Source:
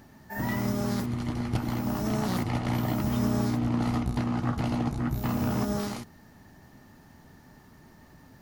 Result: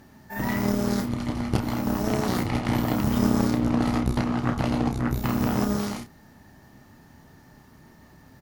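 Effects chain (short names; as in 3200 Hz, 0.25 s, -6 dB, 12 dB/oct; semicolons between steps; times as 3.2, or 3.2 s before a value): added harmonics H 3 -16 dB, 4 -21 dB, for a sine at -15 dBFS; doubler 30 ms -7.5 dB; gain +6.5 dB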